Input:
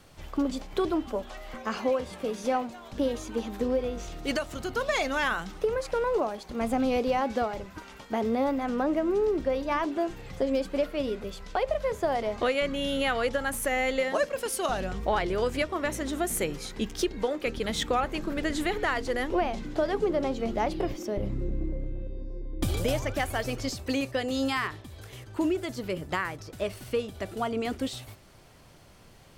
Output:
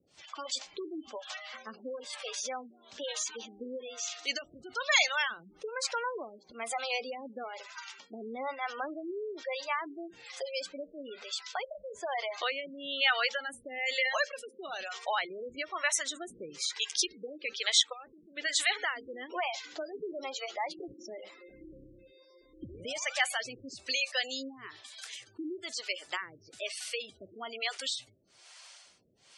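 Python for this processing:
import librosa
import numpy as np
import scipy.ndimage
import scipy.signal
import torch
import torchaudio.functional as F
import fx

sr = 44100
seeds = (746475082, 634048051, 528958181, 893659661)

y = fx.harmonic_tremolo(x, sr, hz=1.1, depth_pct=100, crossover_hz=460.0)
y = fx.level_steps(y, sr, step_db=15, at=(17.79, 18.37))
y = fx.weighting(y, sr, curve='ITU-R 468')
y = fx.spec_gate(y, sr, threshold_db=-15, keep='strong')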